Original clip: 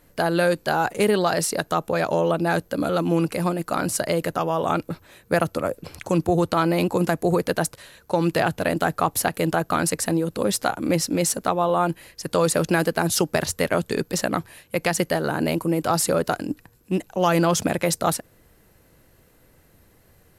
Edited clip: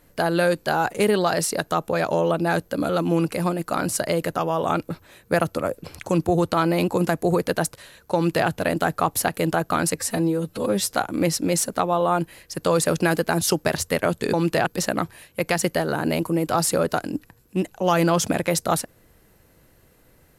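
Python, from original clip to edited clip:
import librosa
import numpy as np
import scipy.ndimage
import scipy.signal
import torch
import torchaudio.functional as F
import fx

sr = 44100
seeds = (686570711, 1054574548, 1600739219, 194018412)

y = fx.edit(x, sr, fx.duplicate(start_s=8.15, length_s=0.33, to_s=14.02),
    fx.stretch_span(start_s=9.96, length_s=0.63, factor=1.5), tone=tone)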